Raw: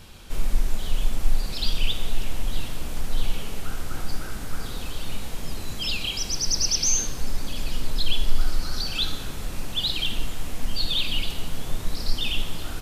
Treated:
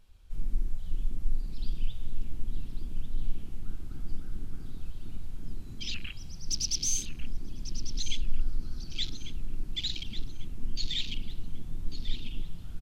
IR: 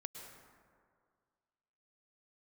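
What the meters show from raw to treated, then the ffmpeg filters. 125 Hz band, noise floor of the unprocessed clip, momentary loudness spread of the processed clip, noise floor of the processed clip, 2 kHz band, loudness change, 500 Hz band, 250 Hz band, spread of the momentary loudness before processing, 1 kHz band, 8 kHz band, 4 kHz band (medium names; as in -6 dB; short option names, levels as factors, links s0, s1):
-6.5 dB, -33 dBFS, 12 LU, -41 dBFS, -13.0 dB, -9.0 dB, -17.0 dB, -8.5 dB, 11 LU, -22.5 dB, -8.5 dB, -10.0 dB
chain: -filter_complex "[0:a]afwtdn=0.0398,asplit=2[s0][s1];[s1]adelay=1145,lowpass=f=3700:p=1,volume=0.398,asplit=2[s2][s3];[s3]adelay=1145,lowpass=f=3700:p=1,volume=0.5,asplit=2[s4][s5];[s5]adelay=1145,lowpass=f=3700:p=1,volume=0.5,asplit=2[s6][s7];[s7]adelay=1145,lowpass=f=3700:p=1,volume=0.5,asplit=2[s8][s9];[s9]adelay=1145,lowpass=f=3700:p=1,volume=0.5,asplit=2[s10][s11];[s11]adelay=1145,lowpass=f=3700:p=1,volume=0.5[s12];[s0][s2][s4][s6][s8][s10][s12]amix=inputs=7:normalize=0,volume=0.447"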